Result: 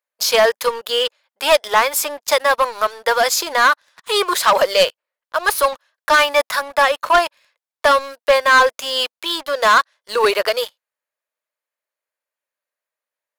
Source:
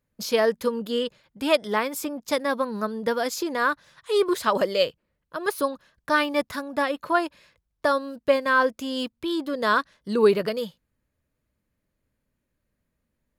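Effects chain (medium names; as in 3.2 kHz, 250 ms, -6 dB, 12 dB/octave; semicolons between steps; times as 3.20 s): high-pass 600 Hz 24 dB/octave; waveshaping leveller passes 3; trim +3 dB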